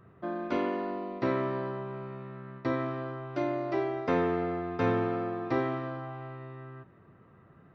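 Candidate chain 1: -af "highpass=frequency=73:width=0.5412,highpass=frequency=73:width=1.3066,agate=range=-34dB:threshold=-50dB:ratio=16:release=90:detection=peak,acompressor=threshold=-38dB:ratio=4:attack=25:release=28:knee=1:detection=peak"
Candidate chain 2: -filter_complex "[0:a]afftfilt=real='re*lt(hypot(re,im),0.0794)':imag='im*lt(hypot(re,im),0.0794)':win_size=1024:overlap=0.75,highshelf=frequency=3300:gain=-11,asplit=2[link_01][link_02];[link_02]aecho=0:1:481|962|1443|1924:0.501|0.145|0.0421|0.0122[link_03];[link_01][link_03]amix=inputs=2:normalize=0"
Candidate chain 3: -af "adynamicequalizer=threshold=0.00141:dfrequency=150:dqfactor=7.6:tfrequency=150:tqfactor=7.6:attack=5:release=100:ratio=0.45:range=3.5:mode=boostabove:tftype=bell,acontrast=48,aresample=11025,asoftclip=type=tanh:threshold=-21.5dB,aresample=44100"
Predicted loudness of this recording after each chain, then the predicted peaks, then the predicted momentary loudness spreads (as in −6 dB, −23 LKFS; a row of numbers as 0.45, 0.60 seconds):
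−37.0, −40.0, −29.5 LKFS; −22.5, −27.0, −21.5 dBFS; 8, 7, 10 LU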